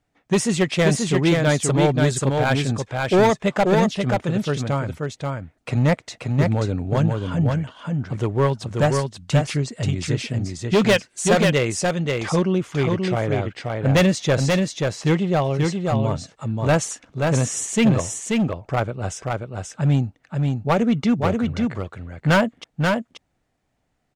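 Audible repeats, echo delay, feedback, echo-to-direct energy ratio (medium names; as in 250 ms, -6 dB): 1, 533 ms, no regular repeats, -3.5 dB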